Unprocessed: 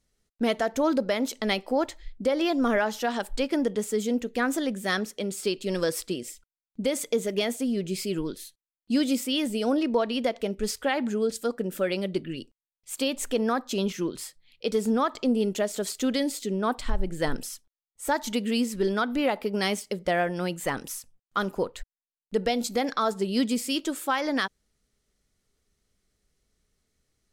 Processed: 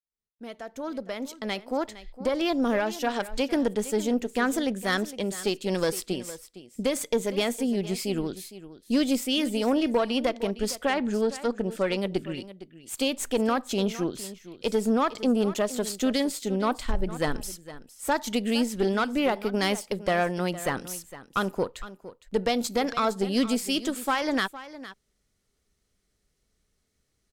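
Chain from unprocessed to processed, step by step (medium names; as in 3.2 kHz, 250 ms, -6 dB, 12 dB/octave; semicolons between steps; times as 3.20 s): fade-in on the opening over 2.91 s; 2.58–3.07 s: peaking EQ 1.2 kHz -7 dB 0.98 oct; 10.90–11.97 s: Bessel low-pass 7.1 kHz, order 2; Chebyshev shaper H 4 -20 dB, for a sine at -14 dBFS; delay 460 ms -15.5 dB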